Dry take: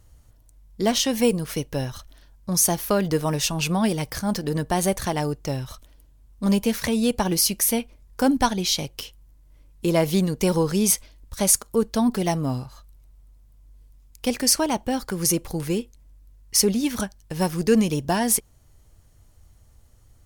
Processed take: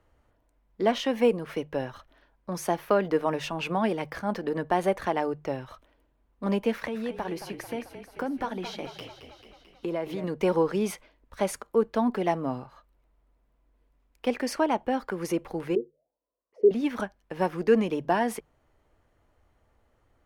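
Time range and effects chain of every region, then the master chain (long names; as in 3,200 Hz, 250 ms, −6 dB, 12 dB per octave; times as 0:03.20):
0:06.72–0:10.24: downward compressor, threshold −24 dBFS + echo with shifted repeats 220 ms, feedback 63%, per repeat −36 Hz, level −10 dB
0:15.75–0:16.71: low shelf with overshoot 730 Hz +10.5 dB, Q 3 + envelope filter 360–1,200 Hz, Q 11, down, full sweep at −14 dBFS
whole clip: three-way crossover with the lows and the highs turned down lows −14 dB, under 260 Hz, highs −22 dB, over 2,700 Hz; mains-hum notches 50/100/150 Hz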